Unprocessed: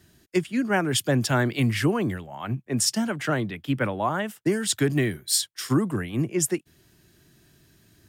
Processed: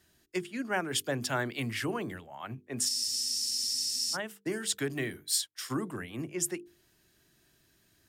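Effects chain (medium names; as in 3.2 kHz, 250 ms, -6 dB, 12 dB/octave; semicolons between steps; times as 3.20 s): peaking EQ 130 Hz -7.5 dB 2.5 oct; hum notches 50/100/150/200/250/300/350/400/450 Hz; spectral freeze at 2.91 s, 1.23 s; trim -6 dB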